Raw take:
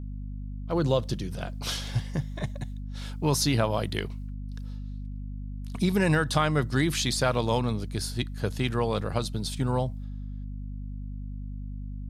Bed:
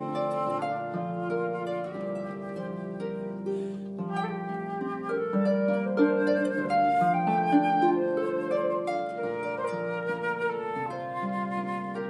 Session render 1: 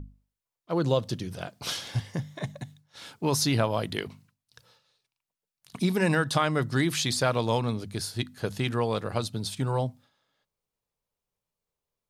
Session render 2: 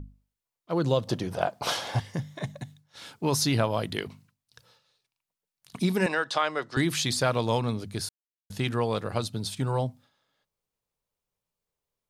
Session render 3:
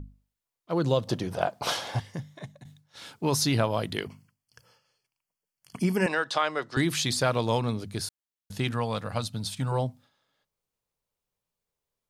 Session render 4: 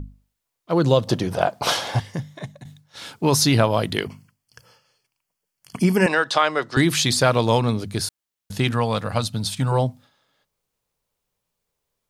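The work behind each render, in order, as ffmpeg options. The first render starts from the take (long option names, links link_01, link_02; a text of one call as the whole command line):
ffmpeg -i in.wav -af "bandreject=frequency=50:width_type=h:width=6,bandreject=frequency=100:width_type=h:width=6,bandreject=frequency=150:width_type=h:width=6,bandreject=frequency=200:width_type=h:width=6,bandreject=frequency=250:width_type=h:width=6" out.wav
ffmpeg -i in.wav -filter_complex "[0:a]asettb=1/sr,asplit=3[link_01][link_02][link_03];[link_01]atrim=end=1.074[link_04];[link_02]atrim=start=1.07:end=2,asetpts=PTS-STARTPTS,afade=type=in:duration=0.004:curve=qsin,afade=type=out:start_time=0.926:duration=0.004:curve=qsin,equalizer=frequency=770:width=0.72:gain=14[link_05];[link_03]atrim=start=1.996[link_06];[link_04][link_05]acrossfade=duration=0.004:curve1=hsin:curve2=qsin[link_07];[link_07][link_06]acrossfade=duration=0.004:curve1=qsin:curve2=hsin,asettb=1/sr,asplit=3[link_08][link_09][link_10];[link_08]atrim=end=6.064[link_11];[link_09]atrim=start=6.06:end=6.77,asetpts=PTS-STARTPTS,afade=type=in:duration=0.004:curve=qsin,afade=type=out:start_time=0.706:duration=0.004:curve=qsin,acrossover=split=360 7200:gain=0.0708 1 0.0708[link_12][link_13][link_14];[link_12][link_13][link_14]amix=inputs=3:normalize=0[link_15];[link_10]atrim=start=6.766[link_16];[link_11][link_15]acrossfade=duration=0.004:curve1=hsin:curve2=qsin[link_17];[link_17][link_16]acrossfade=duration=0.004:curve1=qsin:curve2=hsin,asplit=3[link_18][link_19][link_20];[link_18]atrim=end=8.09,asetpts=PTS-STARTPTS,afade=type=out:start_time=8.086:duration=0.004:curve=hsin[link_21];[link_19]atrim=start=8.09:end=8.5,asetpts=PTS-STARTPTS,volume=0[link_22];[link_20]atrim=start=8.5,asetpts=PTS-STARTPTS,afade=type=in:duration=0.004:curve=hsin[link_23];[link_21][link_22][link_23]concat=n=3:v=0:a=1" out.wav
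ffmpeg -i in.wav -filter_complex "[0:a]asettb=1/sr,asplit=3[link_01][link_02][link_03];[link_01]atrim=end=4.054[link_04];[link_02]atrim=start=4.05:end=6.08,asetpts=PTS-STARTPTS,afade=type=in:duration=0.004:curve=qsin,afade=type=out:start_time=2.026:duration=0.004:curve=qsin,asuperstop=centerf=3800:order=8:qfactor=4.4[link_05];[link_03]atrim=start=6.076[link_06];[link_04][link_05]acrossfade=duration=0.004:curve1=hsin:curve2=qsin[link_07];[link_07][link_06]acrossfade=duration=0.004:curve1=qsin:curve2=hsin,asettb=1/sr,asplit=3[link_08][link_09][link_10];[link_08]atrim=end=8.714[link_11];[link_09]atrim=start=8.71:end=9.72,asetpts=PTS-STARTPTS,afade=type=in:duration=0.004:curve=qsin,afade=type=out:start_time=1.006:duration=0.004:curve=qsin,equalizer=frequency=380:width_type=o:width=0.46:gain=-12.5[link_12];[link_10]atrim=start=9.716[link_13];[link_11][link_12]acrossfade=duration=0.004:curve1=hsin:curve2=qsin[link_14];[link_14][link_13]acrossfade=duration=0.004:curve1=qsin:curve2=hsin,asplit=2[link_15][link_16];[link_15]atrim=end=2.65,asetpts=PTS-STARTPTS,afade=type=out:start_time=1.69:duration=0.96:silence=0.251189[link_17];[link_16]atrim=start=2.65,asetpts=PTS-STARTPTS,afade=type=in:duration=0.004:curve=hsin:silence=0.251189[link_18];[link_17][link_18]concat=n=2:v=0:a=1" out.wav
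ffmpeg -i in.wav -af "volume=7.5dB,alimiter=limit=-2dB:level=0:latency=1" out.wav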